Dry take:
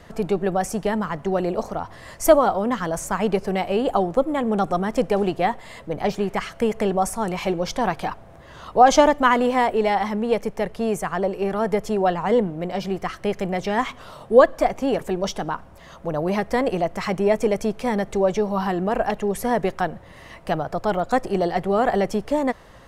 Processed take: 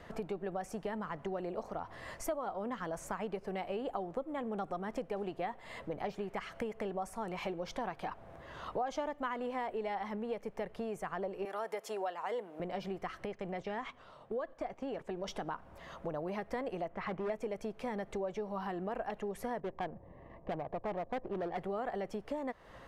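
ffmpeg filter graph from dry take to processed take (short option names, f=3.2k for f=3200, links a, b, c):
-filter_complex "[0:a]asettb=1/sr,asplit=3[a][b][c];[a]atrim=end=11.454[d];[b]atrim=start=11.45:end=12.6,asetpts=PTS-STARTPTS,afade=t=in:d=0.004:c=qsin,afade=t=out:st=1.146:d=0.004:c=qsin,highpass=500,aemphasis=mode=production:type=cd[e];[c]atrim=start=12.596[f];[d][e]acrossfade=d=0.004:c1=hsin:c2=qsin[g];[g][f]acrossfade=d=0.004:c1=qsin:c2=hsin,asettb=1/sr,asplit=3[h][i][j];[h]atrim=end=13.254[k];[i]atrim=start=13.25:end=15.28,asetpts=PTS-STARTPTS,afade=t=in:d=0.004:c=qsin,afade=t=out:st=2.026:d=0.004:c=qsin,lowpass=8.1k,agate=range=-10dB:threshold=-32dB:ratio=16:release=100:detection=peak,acompressor=threshold=-36dB:ratio=1.5:attack=3.2:release=140:knee=1:detection=peak[l];[j]atrim=start=15.276[m];[k][l]acrossfade=d=0.004:c1=hsin:c2=qsin[n];[n][m]acrossfade=d=0.004:c1=qsin:c2=hsin,asettb=1/sr,asplit=3[o][p][q];[o]atrim=end=16.884[r];[p]atrim=start=16.88:end=17.3,asetpts=PTS-STARTPTS,afade=t=in:d=0.004:c=qsin,afade=t=out:st=0.416:d=0.004:c=qsin,lowpass=2.4k,asoftclip=type=hard:threshold=-20dB[s];[q]atrim=start=17.296[t];[r][s]acrossfade=d=0.004:c1=hsin:c2=qsin[u];[u][t]acrossfade=d=0.004:c1=qsin:c2=hsin,asettb=1/sr,asplit=3[v][w][x];[v]atrim=end=19.604[y];[w]atrim=start=19.6:end=21.58,asetpts=PTS-STARTPTS,afade=t=in:d=0.004:c=qsin,afade=t=out:st=1.976:d=0.004:c=qsin,asuperstop=centerf=1400:order=8:qfactor=4.2,adynamicsmooth=sensitivity=1:basefreq=720,volume=19dB,asoftclip=hard,volume=-19dB[z];[x]atrim=start=21.576[aa];[y][z]acrossfade=d=0.004:c1=hsin:c2=qsin[ab];[ab][aa]acrossfade=d=0.004:c1=qsin:c2=hsin,acompressor=threshold=-31dB:ratio=5,bass=f=250:g=-4,treble=f=4k:g=-8,volume=-4.5dB"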